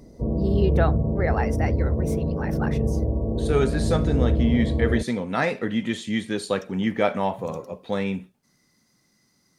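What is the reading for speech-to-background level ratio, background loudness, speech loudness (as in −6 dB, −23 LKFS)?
−2.5 dB, −24.5 LKFS, −27.0 LKFS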